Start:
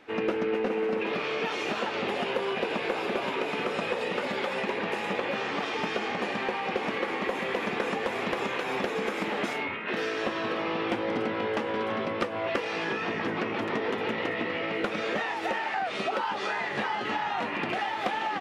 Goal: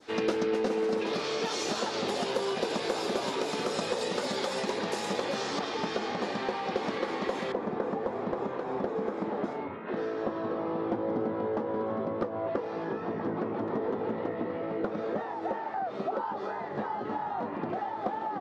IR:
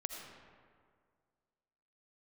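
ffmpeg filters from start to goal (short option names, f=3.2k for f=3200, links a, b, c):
-af "asetnsamples=n=441:p=0,asendcmd='5.59 lowpass f 3400;7.52 lowpass f 1100',lowpass=7k,adynamicequalizer=threshold=0.00447:dfrequency=2600:dqfactor=0.77:tfrequency=2600:tqfactor=0.77:attack=5:release=100:ratio=0.375:range=3.5:mode=cutabove:tftype=bell,aexciter=amount=3.2:drive=8.7:freq=3.7k"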